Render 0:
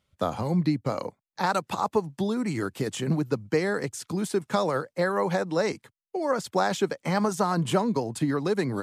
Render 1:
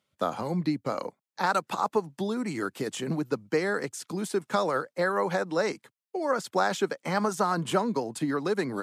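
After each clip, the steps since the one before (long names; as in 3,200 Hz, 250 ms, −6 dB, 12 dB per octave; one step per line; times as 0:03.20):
high-pass filter 190 Hz 12 dB per octave
dynamic equaliser 1,400 Hz, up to +4 dB, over −42 dBFS, Q 2.6
level −1.5 dB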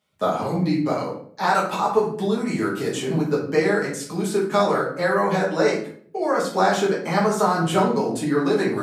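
rectangular room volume 65 cubic metres, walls mixed, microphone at 1.4 metres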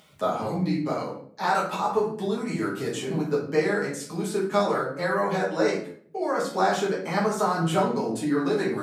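upward compression, threshold −38 dBFS
flanger 0.39 Hz, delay 6 ms, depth 8.8 ms, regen +63%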